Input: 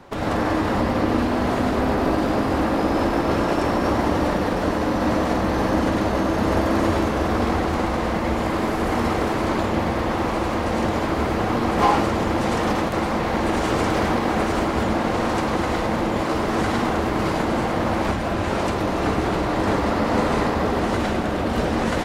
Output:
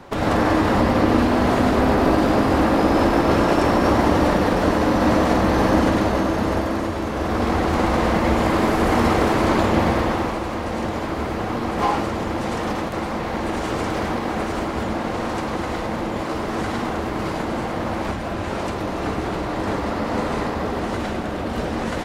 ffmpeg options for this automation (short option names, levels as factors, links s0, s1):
-af "volume=4.47,afade=t=out:st=5.76:d=1.18:silence=0.354813,afade=t=in:st=6.94:d=1.04:silence=0.334965,afade=t=out:st=9.9:d=0.5:silence=0.446684"